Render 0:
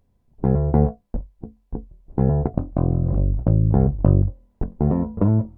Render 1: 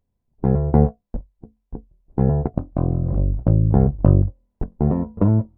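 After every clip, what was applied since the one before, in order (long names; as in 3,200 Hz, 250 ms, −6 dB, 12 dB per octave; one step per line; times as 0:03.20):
expander for the loud parts 1.5 to 1, over −39 dBFS
level +3.5 dB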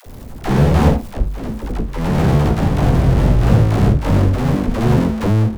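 power curve on the samples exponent 0.35
delay with pitch and tempo change per echo 100 ms, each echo +2 semitones, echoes 2
all-pass dispersion lows, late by 66 ms, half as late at 450 Hz
level −5.5 dB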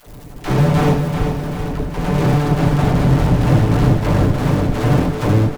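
lower of the sound and its delayed copy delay 6.8 ms
repeating echo 388 ms, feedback 56%, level −6 dB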